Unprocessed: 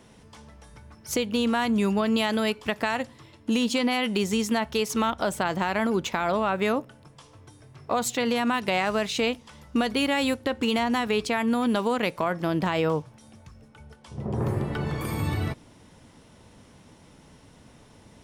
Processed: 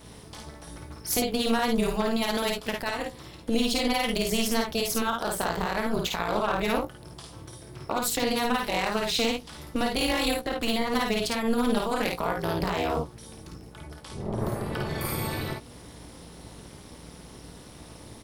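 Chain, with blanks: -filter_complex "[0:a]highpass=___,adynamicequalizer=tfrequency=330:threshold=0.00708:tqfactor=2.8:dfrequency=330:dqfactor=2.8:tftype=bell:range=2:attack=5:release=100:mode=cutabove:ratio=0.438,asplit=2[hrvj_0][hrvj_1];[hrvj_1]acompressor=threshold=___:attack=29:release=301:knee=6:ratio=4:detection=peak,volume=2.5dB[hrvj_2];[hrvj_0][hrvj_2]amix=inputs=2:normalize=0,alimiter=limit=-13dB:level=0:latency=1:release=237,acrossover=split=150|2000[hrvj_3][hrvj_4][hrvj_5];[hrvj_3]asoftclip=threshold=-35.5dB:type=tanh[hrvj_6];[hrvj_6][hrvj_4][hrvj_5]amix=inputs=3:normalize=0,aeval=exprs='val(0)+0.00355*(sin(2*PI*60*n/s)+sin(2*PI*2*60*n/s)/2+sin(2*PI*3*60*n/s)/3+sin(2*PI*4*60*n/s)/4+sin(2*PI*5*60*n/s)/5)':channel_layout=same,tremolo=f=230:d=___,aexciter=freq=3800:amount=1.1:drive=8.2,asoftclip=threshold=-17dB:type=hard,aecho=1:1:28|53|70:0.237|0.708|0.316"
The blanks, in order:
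44, -41dB, 1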